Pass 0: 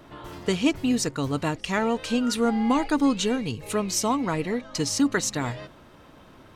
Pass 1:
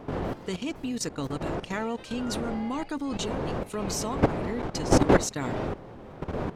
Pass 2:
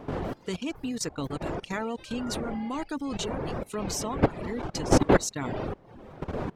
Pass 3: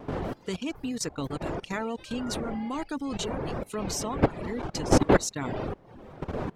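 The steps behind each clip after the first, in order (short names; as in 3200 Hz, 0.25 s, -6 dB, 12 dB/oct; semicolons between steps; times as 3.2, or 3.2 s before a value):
wind noise 530 Hz -23 dBFS; level quantiser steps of 14 dB; gain -2 dB
reverb removal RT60 0.66 s
wow and flutter 19 cents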